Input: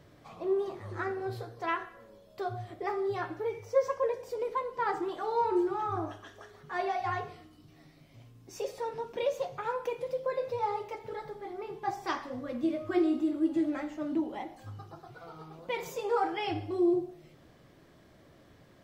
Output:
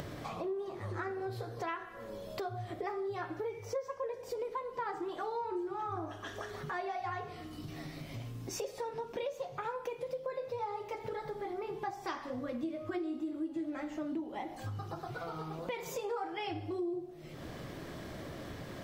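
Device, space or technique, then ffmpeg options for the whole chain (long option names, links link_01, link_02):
upward and downward compression: -af "acompressor=mode=upward:threshold=-35dB:ratio=2.5,acompressor=threshold=-38dB:ratio=5,volume=2.5dB"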